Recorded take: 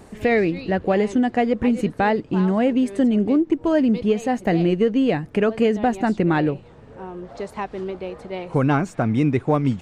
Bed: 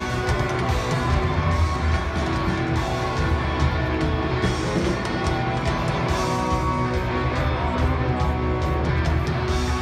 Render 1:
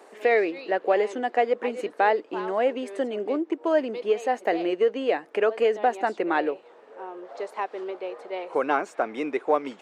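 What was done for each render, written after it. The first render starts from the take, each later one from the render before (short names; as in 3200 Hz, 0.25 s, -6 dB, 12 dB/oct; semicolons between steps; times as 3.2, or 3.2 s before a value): HPF 400 Hz 24 dB/oct; high shelf 3500 Hz -7.5 dB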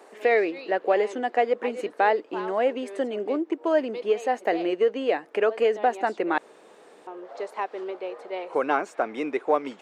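6.38–7.07 room tone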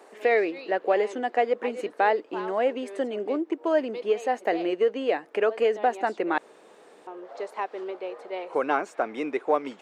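gain -1 dB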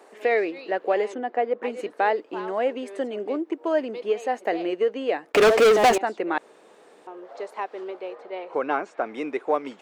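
1.14–1.63 LPF 1500 Hz 6 dB/oct; 5.32–5.98 sample leveller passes 5; 8.15–9.06 air absorption 88 m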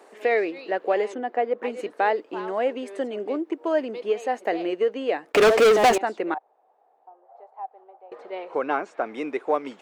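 6.34–8.12 band-pass 770 Hz, Q 8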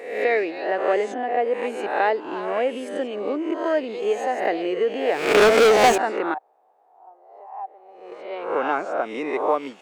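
spectral swells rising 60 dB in 0.73 s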